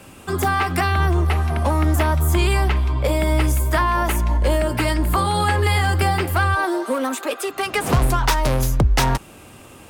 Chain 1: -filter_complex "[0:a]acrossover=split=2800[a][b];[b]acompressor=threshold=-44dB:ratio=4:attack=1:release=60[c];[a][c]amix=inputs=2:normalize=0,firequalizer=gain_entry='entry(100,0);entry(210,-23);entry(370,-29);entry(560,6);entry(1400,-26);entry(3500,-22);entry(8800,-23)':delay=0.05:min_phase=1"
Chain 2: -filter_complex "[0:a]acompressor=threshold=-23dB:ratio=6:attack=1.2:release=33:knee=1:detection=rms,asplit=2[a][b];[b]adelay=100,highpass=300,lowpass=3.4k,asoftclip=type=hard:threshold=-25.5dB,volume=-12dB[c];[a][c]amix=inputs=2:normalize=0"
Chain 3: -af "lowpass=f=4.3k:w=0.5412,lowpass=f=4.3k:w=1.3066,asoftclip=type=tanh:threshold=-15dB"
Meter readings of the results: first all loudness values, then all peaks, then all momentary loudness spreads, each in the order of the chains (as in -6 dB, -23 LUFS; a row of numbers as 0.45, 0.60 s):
-22.0, -27.5, -22.5 LUFS; -8.0, -16.5, -15.0 dBFS; 8, 2, 4 LU